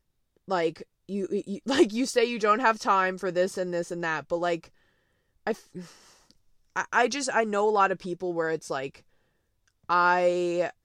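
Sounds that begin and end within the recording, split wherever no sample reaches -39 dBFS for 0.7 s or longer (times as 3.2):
5.47–8.96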